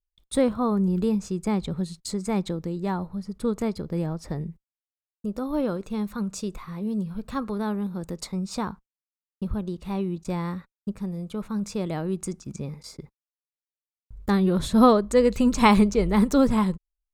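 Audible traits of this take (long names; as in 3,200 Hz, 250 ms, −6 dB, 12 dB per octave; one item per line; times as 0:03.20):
background noise floor −96 dBFS
spectral slope −6.5 dB per octave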